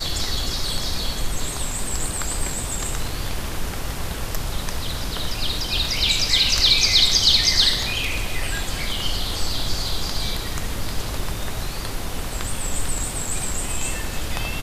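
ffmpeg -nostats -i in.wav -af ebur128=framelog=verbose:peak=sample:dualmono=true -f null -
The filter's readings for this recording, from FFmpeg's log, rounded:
Integrated loudness:
  I:         -19.1 LUFS
  Threshold: -29.1 LUFS
Loudness range:
  LRA:        10.9 LU
  Threshold: -38.6 LUFS
  LRA low:   -24.7 LUFS
  LRA high:  -13.8 LUFS
Sample peak:
  Peak:       -3.6 dBFS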